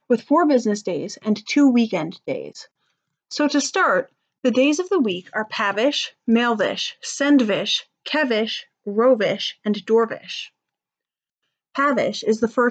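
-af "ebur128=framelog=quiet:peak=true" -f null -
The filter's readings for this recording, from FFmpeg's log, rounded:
Integrated loudness:
  I:         -20.5 LUFS
  Threshold: -30.9 LUFS
Loudness range:
  LRA:         3.0 LU
  Threshold: -41.3 LUFS
  LRA low:   -23.1 LUFS
  LRA high:  -20.1 LUFS
True peak:
  Peak:       -5.9 dBFS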